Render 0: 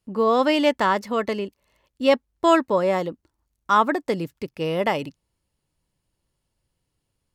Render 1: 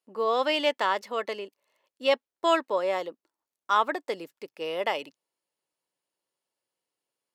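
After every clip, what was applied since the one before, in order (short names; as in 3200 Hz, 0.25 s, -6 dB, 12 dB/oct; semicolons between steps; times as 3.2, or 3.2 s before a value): dynamic EQ 3200 Hz, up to +6 dB, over -38 dBFS, Q 1.2; Chebyshev high-pass 480 Hz, order 2; gain -5.5 dB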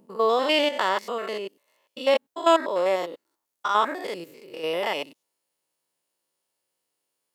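stepped spectrum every 0.1 s; high shelf 7000 Hz +7 dB; gain +5.5 dB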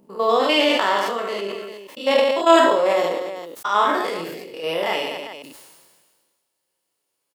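on a send: reverse bouncing-ball echo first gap 30 ms, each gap 1.5×, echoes 5; on the sum: sustainer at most 35 dB/s; gain +1.5 dB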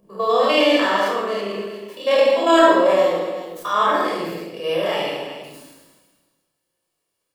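reverb RT60 0.85 s, pre-delay 20 ms, DRR -0.5 dB; gain -5 dB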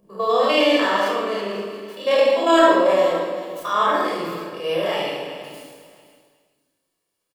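feedback echo 0.522 s, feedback 21%, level -17 dB; gain -1 dB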